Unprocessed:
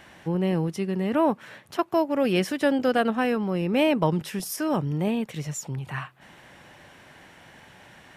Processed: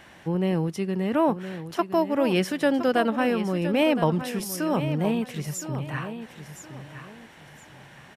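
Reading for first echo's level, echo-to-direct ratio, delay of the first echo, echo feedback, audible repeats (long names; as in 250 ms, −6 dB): −11.0 dB, −10.5 dB, 1,016 ms, 28%, 3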